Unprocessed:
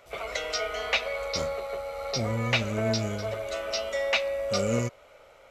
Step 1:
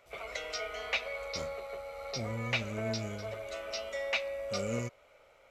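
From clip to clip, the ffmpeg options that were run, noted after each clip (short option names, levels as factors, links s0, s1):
-af "equalizer=f=2300:w=4:g=3.5,volume=0.398"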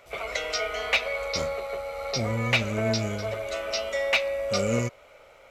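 -af "asoftclip=type=hard:threshold=0.0794,volume=2.82"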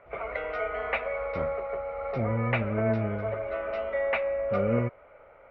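-af "lowpass=f=1900:w=0.5412,lowpass=f=1900:w=1.3066"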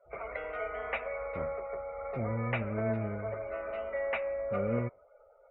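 -af "afftdn=nr=23:nf=-50,volume=0.531"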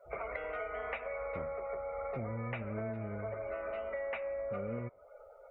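-af "acompressor=threshold=0.00794:ratio=6,volume=1.88"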